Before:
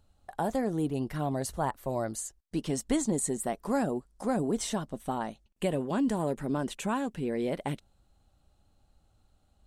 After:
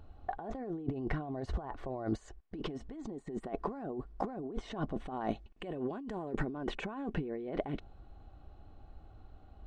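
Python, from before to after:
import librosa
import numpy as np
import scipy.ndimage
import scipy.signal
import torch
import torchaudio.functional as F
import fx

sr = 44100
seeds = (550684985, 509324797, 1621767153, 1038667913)

y = fx.low_shelf(x, sr, hz=220.0, db=-4.0)
y = y + 0.36 * np.pad(y, (int(2.7 * sr / 1000.0), 0))[:len(y)]
y = fx.over_compress(y, sr, threshold_db=-42.0, ratio=-1.0)
y = fx.spacing_loss(y, sr, db_at_10k=fx.steps((0.0, 42.0), (5.13, 32.0), (6.49, 41.0)))
y = y * librosa.db_to_amplitude(6.0)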